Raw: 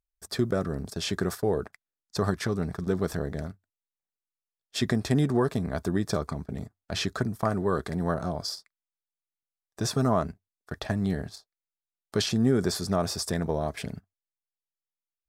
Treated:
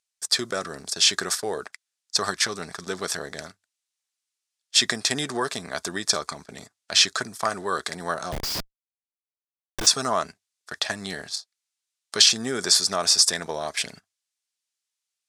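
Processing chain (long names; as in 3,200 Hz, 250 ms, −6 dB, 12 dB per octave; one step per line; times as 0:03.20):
meter weighting curve ITU-R 468
0:08.32–0:09.87: comparator with hysteresis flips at −35.5 dBFS
level +4 dB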